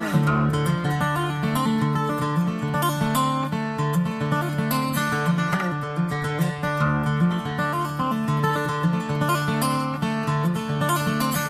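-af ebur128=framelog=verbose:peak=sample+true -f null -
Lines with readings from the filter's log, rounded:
Integrated loudness:
  I:         -23.4 LUFS
  Threshold: -33.4 LUFS
Loudness range:
  LRA:         0.9 LU
  Threshold: -43.5 LUFS
  LRA low:   -23.9 LUFS
  LRA high:  -23.0 LUFS
Sample peak:
  Peak:       -7.8 dBFS
True peak:
  Peak:       -7.8 dBFS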